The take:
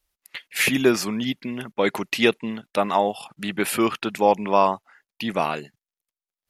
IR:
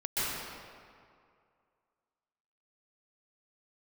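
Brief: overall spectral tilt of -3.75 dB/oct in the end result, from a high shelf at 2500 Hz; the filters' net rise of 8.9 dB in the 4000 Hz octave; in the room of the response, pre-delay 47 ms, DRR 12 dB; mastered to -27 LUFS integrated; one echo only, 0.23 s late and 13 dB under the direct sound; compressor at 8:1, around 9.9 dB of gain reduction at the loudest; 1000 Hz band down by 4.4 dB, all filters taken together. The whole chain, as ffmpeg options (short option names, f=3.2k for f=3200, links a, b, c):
-filter_complex "[0:a]equalizer=f=1k:t=o:g=-6.5,highshelf=f=2.5k:g=3.5,equalizer=f=4k:t=o:g=9,acompressor=threshold=-22dB:ratio=8,aecho=1:1:230:0.224,asplit=2[a][b];[1:a]atrim=start_sample=2205,adelay=47[c];[b][c]afir=irnorm=-1:irlink=0,volume=-21dB[d];[a][d]amix=inputs=2:normalize=0"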